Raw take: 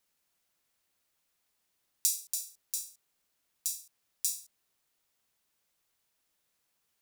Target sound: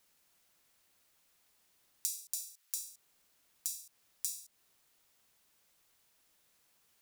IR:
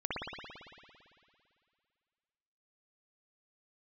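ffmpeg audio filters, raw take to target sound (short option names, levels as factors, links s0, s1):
-filter_complex "[0:a]asettb=1/sr,asplit=3[s0][s1][s2];[s0]atrim=end=2.384[s3];[s1]atrim=start=2.38:end=2.89,asetpts=PTS-STARTPTS,afade=t=in:d=0.004:c=qsin,afade=t=out:st=0.506:d=0.004:c=qsin,highpass=1300[s4];[s2]atrim=start=2.886[s5];[s3][s4]acrossfade=d=0.004:c1=hsin:c2=qsin[s6];[s6][s5]acrossfade=d=0.004:c1=qsin:c2=hsin,acompressor=threshold=0.00631:ratio=3,volume=2.11"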